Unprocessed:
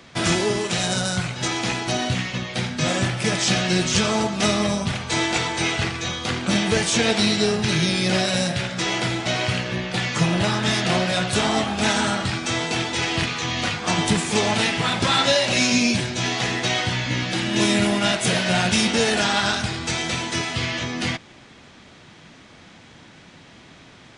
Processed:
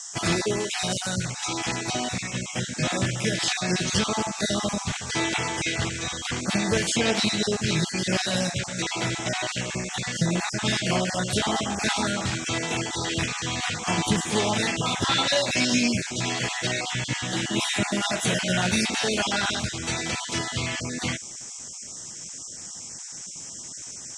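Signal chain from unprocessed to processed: random spectral dropouts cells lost 27%; harmoniser +4 st -18 dB; band noise 5300–8100 Hz -36 dBFS; gain -3 dB

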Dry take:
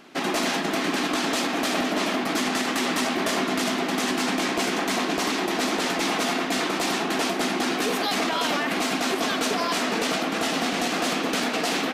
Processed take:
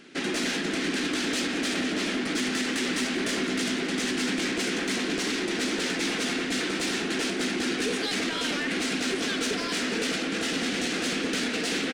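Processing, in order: downsampling 22050 Hz; soft clip -20.5 dBFS, distortion -17 dB; band shelf 860 Hz -10.5 dB 1.2 oct; echo 0.174 s -16.5 dB

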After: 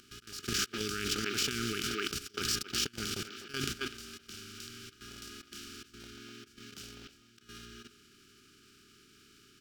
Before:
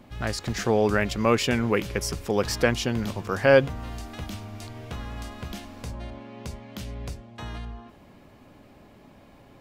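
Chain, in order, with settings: per-bin compression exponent 0.4; auto swell 0.154 s; brick-wall FIR band-stop 430–1200 Hz; bell 1900 Hz -13.5 dB 0.72 oct; gate -23 dBFS, range -22 dB; speakerphone echo 0.25 s, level -9 dB; level quantiser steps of 13 dB; tilt shelf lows -7.5 dB, about 870 Hz; negative-ratio compressor -35 dBFS, ratio -1; decimation joined by straight lines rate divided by 2×; gain +2.5 dB

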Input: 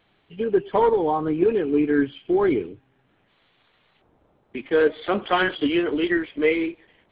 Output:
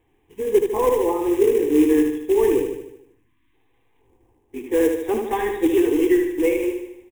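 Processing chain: repeated pitch sweeps +2.5 st, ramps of 1.444 s; spectral delete 3.12–3.54, 350–940 Hz; tilt shelf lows +8 dB, about 780 Hz; short-mantissa float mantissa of 2-bit; fixed phaser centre 910 Hz, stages 8; feedback echo 76 ms, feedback 53%, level -5.5 dB

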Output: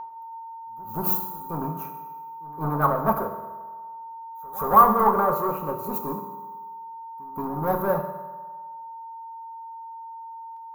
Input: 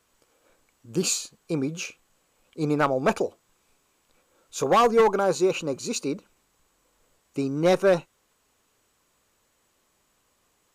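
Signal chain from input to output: sample leveller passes 3; EQ curve 200 Hz 0 dB, 350 Hz -12 dB, 1100 Hz +6 dB, 2800 Hz -28 dB, 8700 Hz -26 dB, 13000 Hz +14 dB; whine 910 Hz -25 dBFS; bell 130 Hz -6 dB 0.6 oct; pre-echo 0.177 s -16.5 dB; reverb RT60 1.5 s, pre-delay 3 ms, DRR 2.5 dB; upward expander 1.5:1, over -30 dBFS

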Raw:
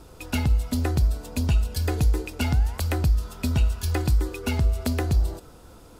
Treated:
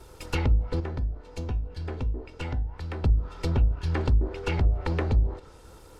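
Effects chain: minimum comb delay 2.2 ms; treble ducked by the level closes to 440 Hz, closed at -16 dBFS; 0.8–3.04 resonator 250 Hz, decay 0.3 s, harmonics all, mix 60%

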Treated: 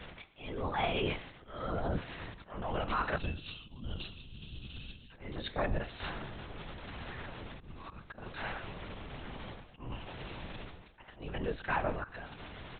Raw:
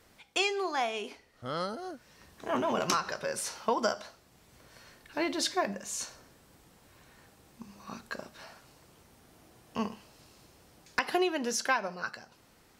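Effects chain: octaver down 2 oct, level +2 dB; crackle 130/s -41 dBFS; spectral gain 3.16–5.11, 260–2500 Hz -21 dB; reverse; compressor 8:1, threshold -43 dBFS, peak gain reduction 20.5 dB; reverse; auto swell 0.39 s; on a send: feedback echo 0.113 s, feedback 36%, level -20 dB; on the sum: LPC vocoder at 8 kHz whisper; gain +13 dB

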